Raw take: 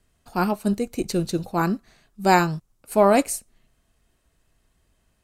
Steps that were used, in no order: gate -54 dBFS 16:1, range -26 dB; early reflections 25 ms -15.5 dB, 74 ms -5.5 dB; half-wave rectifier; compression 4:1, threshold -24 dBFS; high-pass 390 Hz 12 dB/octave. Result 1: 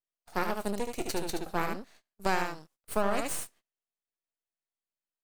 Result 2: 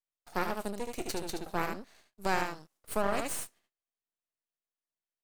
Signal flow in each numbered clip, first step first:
high-pass > half-wave rectifier > early reflections > gate > compression; gate > early reflections > compression > high-pass > half-wave rectifier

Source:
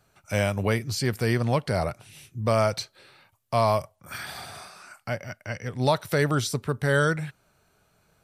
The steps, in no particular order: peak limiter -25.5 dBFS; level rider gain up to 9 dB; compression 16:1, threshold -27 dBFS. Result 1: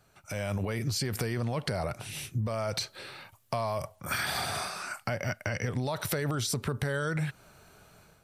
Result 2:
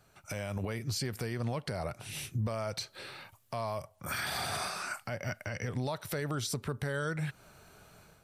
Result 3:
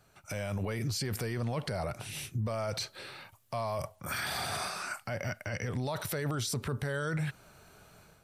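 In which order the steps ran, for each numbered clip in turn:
peak limiter > level rider > compression; level rider > compression > peak limiter; level rider > peak limiter > compression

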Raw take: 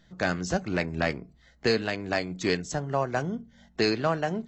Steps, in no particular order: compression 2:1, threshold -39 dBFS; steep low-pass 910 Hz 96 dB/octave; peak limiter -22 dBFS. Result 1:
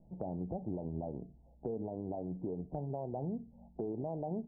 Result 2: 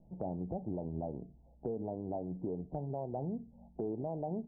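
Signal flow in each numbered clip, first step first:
peak limiter > steep low-pass > compression; steep low-pass > peak limiter > compression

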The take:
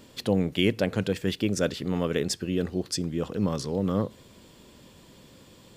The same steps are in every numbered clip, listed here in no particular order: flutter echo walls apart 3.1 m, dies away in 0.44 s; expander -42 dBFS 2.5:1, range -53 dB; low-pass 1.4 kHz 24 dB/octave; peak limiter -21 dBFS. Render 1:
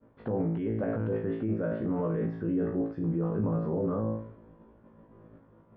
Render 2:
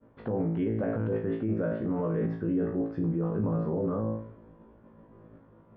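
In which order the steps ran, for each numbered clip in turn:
flutter echo > peak limiter > low-pass > expander; flutter echo > expander > low-pass > peak limiter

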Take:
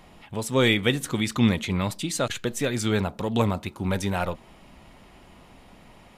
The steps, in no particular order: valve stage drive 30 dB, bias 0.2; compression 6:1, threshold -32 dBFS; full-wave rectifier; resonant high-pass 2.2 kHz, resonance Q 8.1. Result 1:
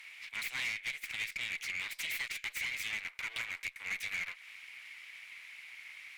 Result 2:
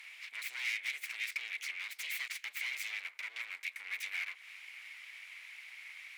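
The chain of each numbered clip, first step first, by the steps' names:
full-wave rectifier > resonant high-pass > compression > valve stage; compression > valve stage > full-wave rectifier > resonant high-pass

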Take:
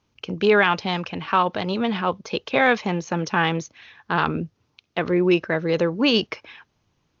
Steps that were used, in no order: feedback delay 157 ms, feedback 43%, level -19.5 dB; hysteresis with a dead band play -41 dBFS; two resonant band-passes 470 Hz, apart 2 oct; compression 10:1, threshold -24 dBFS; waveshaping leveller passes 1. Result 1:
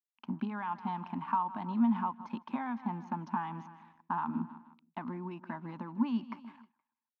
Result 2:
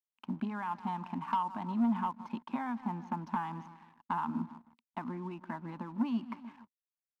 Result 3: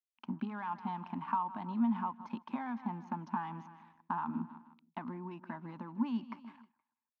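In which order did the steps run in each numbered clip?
hysteresis with a dead band > feedback delay > compression > waveshaping leveller > two resonant band-passes; feedback delay > compression > hysteresis with a dead band > two resonant band-passes > waveshaping leveller; hysteresis with a dead band > feedback delay > waveshaping leveller > compression > two resonant band-passes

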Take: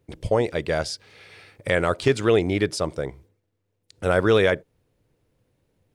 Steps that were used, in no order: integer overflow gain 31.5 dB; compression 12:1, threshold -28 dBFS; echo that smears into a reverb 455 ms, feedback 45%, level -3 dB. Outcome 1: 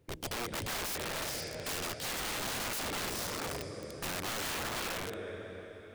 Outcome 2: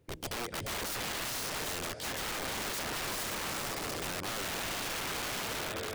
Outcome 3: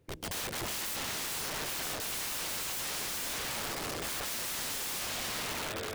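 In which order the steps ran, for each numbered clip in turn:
compression > echo that smears into a reverb > integer overflow; echo that smears into a reverb > compression > integer overflow; echo that smears into a reverb > integer overflow > compression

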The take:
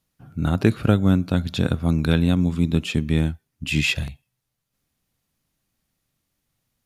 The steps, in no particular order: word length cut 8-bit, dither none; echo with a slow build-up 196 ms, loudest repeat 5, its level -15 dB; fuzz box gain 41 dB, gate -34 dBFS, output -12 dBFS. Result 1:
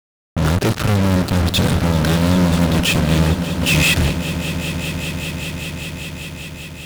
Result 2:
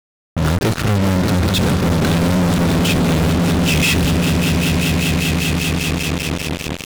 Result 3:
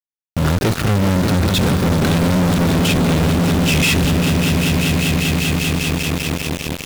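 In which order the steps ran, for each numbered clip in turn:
fuzz box > echo with a slow build-up > word length cut; echo with a slow build-up > fuzz box > word length cut; echo with a slow build-up > word length cut > fuzz box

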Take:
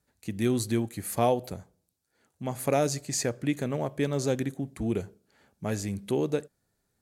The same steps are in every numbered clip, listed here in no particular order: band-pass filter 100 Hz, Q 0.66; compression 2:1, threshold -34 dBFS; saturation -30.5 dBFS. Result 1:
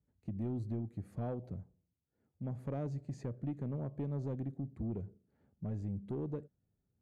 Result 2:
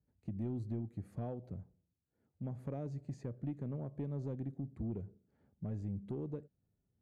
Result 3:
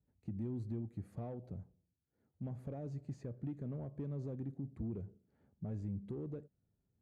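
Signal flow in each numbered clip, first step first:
band-pass filter > compression > saturation; compression > band-pass filter > saturation; compression > saturation > band-pass filter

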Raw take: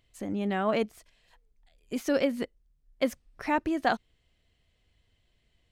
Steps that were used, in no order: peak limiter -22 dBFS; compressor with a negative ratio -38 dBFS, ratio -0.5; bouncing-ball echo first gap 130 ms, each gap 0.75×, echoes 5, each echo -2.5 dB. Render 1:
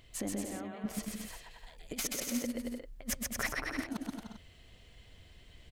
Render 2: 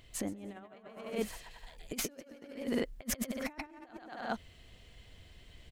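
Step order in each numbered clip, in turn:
compressor with a negative ratio > peak limiter > bouncing-ball echo; bouncing-ball echo > compressor with a negative ratio > peak limiter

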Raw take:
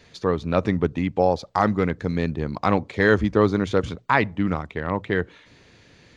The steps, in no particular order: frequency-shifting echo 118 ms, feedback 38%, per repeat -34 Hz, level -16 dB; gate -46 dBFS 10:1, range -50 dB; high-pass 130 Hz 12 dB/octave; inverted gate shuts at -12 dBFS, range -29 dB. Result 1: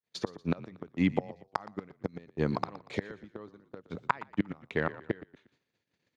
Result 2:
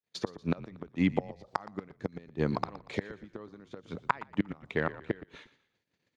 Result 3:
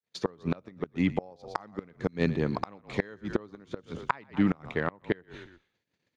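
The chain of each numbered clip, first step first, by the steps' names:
inverted gate > gate > frequency-shifting echo > high-pass; gate > inverted gate > high-pass > frequency-shifting echo; gate > high-pass > frequency-shifting echo > inverted gate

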